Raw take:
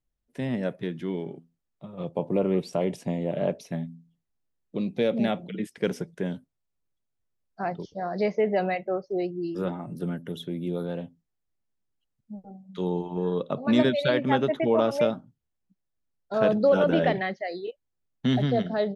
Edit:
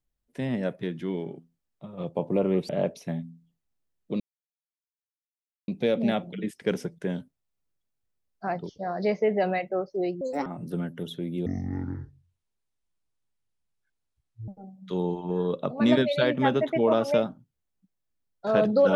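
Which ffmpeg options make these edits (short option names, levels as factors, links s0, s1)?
-filter_complex "[0:a]asplit=7[s0][s1][s2][s3][s4][s5][s6];[s0]atrim=end=2.692[s7];[s1]atrim=start=3.328:end=4.84,asetpts=PTS-STARTPTS,afade=t=out:st=1.508:d=0.004:c=hsin,apad=pad_dur=1.48[s8];[s2]atrim=start=4.84:end=9.374,asetpts=PTS-STARTPTS,afade=t=in:d=0.004:c=hsin[s9];[s3]atrim=start=9.37:end=9.75,asetpts=PTS-STARTPTS,asetrate=67032,aresample=44100[s10];[s4]atrim=start=9.746:end=10.754[s11];[s5]atrim=start=10.75:end=12.35,asetpts=PTS-STARTPTS,asetrate=23373,aresample=44100,atrim=end_sample=133132,asetpts=PTS-STARTPTS[s12];[s6]atrim=start=12.346[s13];[s8][s9]concat=n=2:v=0:a=1[s14];[s7][s14]acrossfade=d=0.004:c1=hsin:c2=hsin[s15];[s15][s10]acrossfade=d=0.004:c1=hsin:c2=hsin[s16];[s16][s11]acrossfade=d=0.004:c1=hsin:c2=hsin[s17];[s17][s12]acrossfade=d=0.004:c1=hsin:c2=hsin[s18];[s18][s13]acrossfade=d=0.004:c1=hsin:c2=hsin"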